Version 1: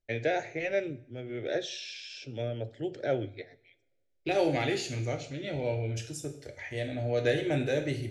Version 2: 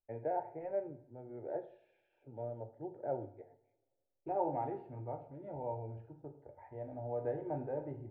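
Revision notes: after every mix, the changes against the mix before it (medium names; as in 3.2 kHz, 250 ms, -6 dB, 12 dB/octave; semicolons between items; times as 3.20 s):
first voice: send +6.5 dB; master: add four-pole ladder low-pass 950 Hz, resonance 80%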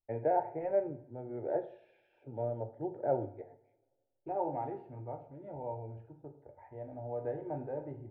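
first voice +6.5 dB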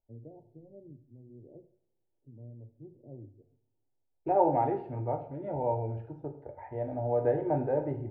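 first voice: add four-pole ladder low-pass 320 Hz, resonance 20%; second voice +10.0 dB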